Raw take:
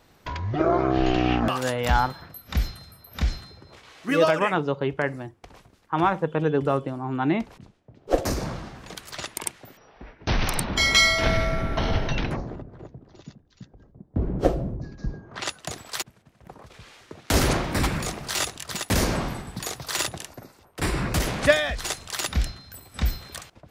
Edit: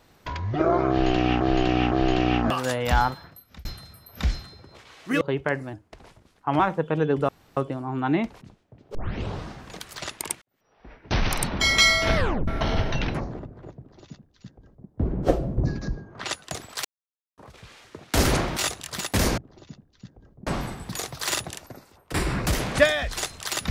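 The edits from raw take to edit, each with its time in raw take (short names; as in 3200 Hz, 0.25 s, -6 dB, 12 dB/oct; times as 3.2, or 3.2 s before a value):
0.9–1.41 loop, 3 plays
2.08–2.63 fade out
4.19–4.74 cut
5.26–6.04 speed 90%
6.73 insert room tone 0.28 s
8.11 tape start 0.51 s
9.58–10.14 fade in quadratic
11.32 tape stop 0.32 s
12.95–14.04 copy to 19.14
14.74–15.04 gain +10.5 dB
16.01–16.54 mute
17.73–18.33 cut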